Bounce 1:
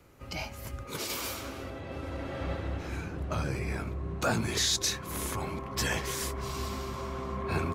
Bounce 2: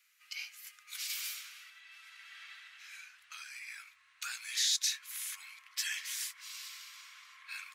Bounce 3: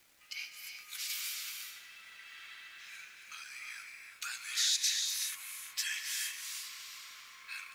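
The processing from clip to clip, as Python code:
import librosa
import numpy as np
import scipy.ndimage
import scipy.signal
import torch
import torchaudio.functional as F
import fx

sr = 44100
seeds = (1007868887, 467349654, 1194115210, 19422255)

y1 = scipy.signal.sosfilt(scipy.signal.cheby2(4, 60, 540.0, 'highpass', fs=sr, output='sos'), x)
y1 = y1 * librosa.db_to_amplitude(-2.0)
y2 = fx.dmg_crackle(y1, sr, seeds[0], per_s=540.0, level_db=-55.0)
y2 = fx.rev_gated(y2, sr, seeds[1], gate_ms=400, shape='rising', drr_db=4.0)
y2 = fx.quant_dither(y2, sr, seeds[2], bits=12, dither='triangular')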